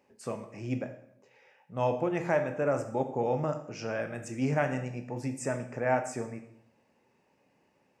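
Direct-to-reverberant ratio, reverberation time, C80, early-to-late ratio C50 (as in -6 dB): 6.5 dB, 0.70 s, 13.0 dB, 10.5 dB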